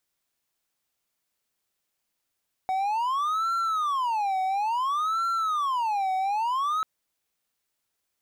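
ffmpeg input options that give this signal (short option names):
-f lavfi -i "aevalsrc='0.0841*(1-4*abs(mod((1056.5*t-303.5/(2*PI*0.58)*sin(2*PI*0.58*t))+0.25,1)-0.5))':d=4.14:s=44100"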